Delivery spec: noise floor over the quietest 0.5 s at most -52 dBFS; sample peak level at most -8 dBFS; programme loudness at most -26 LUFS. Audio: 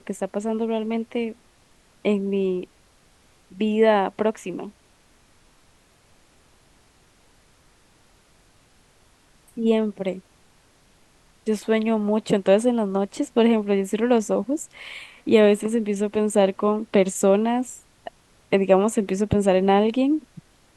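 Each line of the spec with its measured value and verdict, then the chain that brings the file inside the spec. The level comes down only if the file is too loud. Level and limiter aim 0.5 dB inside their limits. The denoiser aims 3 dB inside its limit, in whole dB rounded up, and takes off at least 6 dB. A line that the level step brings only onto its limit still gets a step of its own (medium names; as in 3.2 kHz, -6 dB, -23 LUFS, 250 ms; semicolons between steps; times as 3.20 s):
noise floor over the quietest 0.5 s -58 dBFS: pass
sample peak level -4.0 dBFS: fail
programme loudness -22.0 LUFS: fail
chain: trim -4.5 dB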